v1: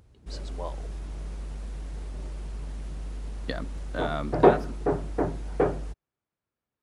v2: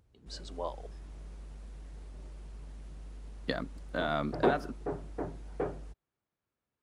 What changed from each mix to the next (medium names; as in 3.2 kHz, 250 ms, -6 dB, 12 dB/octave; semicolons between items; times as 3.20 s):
background -10.5 dB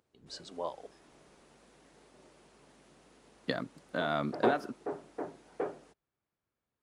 background: add high-pass 290 Hz 12 dB/octave